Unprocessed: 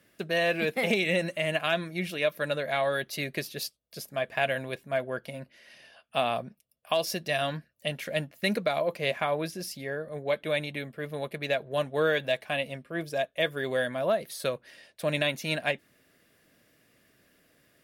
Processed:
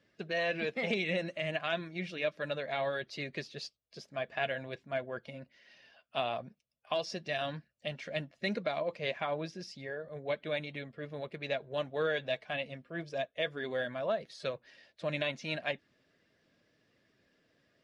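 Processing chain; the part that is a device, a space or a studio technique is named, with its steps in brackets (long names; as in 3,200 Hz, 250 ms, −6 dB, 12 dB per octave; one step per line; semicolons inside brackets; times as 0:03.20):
clip after many re-uploads (low-pass filter 6,100 Hz 24 dB per octave; spectral magnitudes quantised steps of 15 dB)
level −6 dB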